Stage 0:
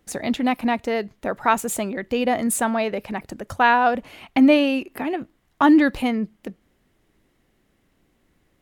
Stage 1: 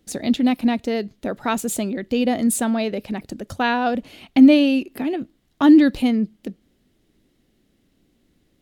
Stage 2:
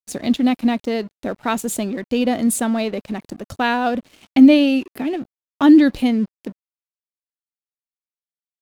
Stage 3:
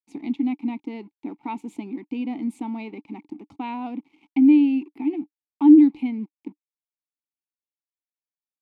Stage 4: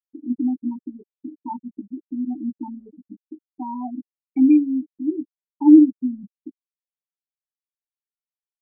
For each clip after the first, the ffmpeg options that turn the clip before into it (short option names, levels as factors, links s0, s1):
-af "equalizer=f=250:t=o:w=1:g=5,equalizer=f=1000:t=o:w=1:g=-7,equalizer=f=2000:t=o:w=1:g=-4,equalizer=f=4000:t=o:w=1:g=5"
-af "aeval=exprs='sgn(val(0))*max(abs(val(0))-0.00668,0)':c=same,volume=1.19"
-filter_complex "[0:a]asplit=2[s0][s1];[s1]alimiter=limit=0.251:level=0:latency=1:release=162,volume=1.12[s2];[s0][s2]amix=inputs=2:normalize=0,asplit=3[s3][s4][s5];[s3]bandpass=f=300:t=q:w=8,volume=1[s6];[s4]bandpass=f=870:t=q:w=8,volume=0.501[s7];[s5]bandpass=f=2240:t=q:w=8,volume=0.355[s8];[s6][s7][s8]amix=inputs=3:normalize=0,volume=0.668"
-filter_complex "[0:a]highpass=f=150:p=1,afftfilt=real='re*gte(hypot(re,im),0.141)':imag='im*gte(hypot(re,im),0.141)':win_size=1024:overlap=0.75,asplit=2[s0][s1];[s1]adelay=16,volume=0.631[s2];[s0][s2]amix=inputs=2:normalize=0"